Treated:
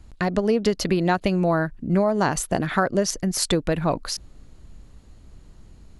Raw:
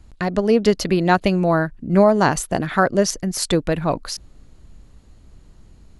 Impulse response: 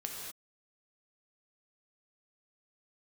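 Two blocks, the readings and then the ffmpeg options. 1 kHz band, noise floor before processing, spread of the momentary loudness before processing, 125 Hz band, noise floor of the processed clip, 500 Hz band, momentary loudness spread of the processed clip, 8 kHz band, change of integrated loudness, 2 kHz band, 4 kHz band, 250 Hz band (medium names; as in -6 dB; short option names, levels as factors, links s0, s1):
-4.5 dB, -49 dBFS, 9 LU, -3.0 dB, -50 dBFS, -4.5 dB, 4 LU, -1.0 dB, -4.0 dB, -4.0 dB, -1.5 dB, -3.5 dB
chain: -af "acompressor=threshold=0.141:ratio=4"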